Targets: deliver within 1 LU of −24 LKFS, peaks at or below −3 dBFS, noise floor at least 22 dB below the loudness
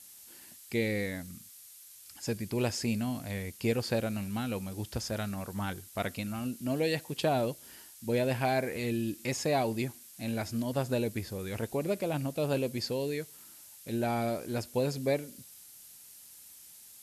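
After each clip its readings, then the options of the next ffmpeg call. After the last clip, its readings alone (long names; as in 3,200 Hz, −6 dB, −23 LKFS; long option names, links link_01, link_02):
background noise floor −53 dBFS; target noise floor −55 dBFS; integrated loudness −33.0 LKFS; sample peak −17.0 dBFS; target loudness −24.0 LKFS
→ -af "afftdn=noise_reduction=6:noise_floor=-53"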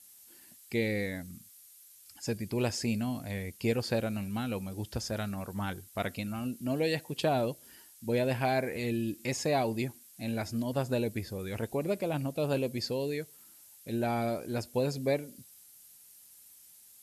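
background noise floor −56 dBFS; integrated loudness −33.0 LKFS; sample peak −17.0 dBFS; target loudness −24.0 LKFS
→ -af "volume=9dB"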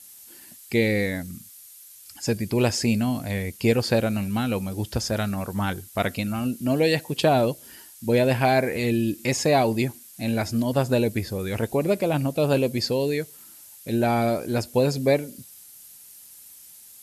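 integrated loudness −24.0 LKFS; sample peak −8.0 dBFS; background noise floor −47 dBFS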